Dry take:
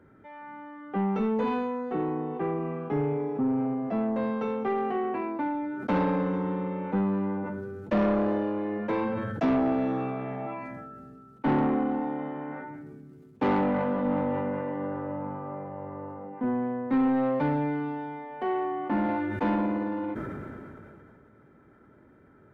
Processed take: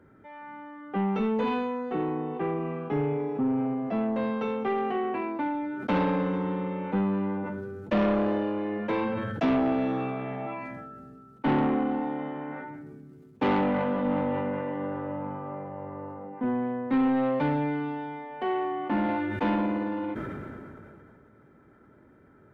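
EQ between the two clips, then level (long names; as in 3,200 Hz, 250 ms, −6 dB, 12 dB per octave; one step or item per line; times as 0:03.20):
dynamic equaliser 3,100 Hz, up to +6 dB, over −55 dBFS, Q 1.3
0.0 dB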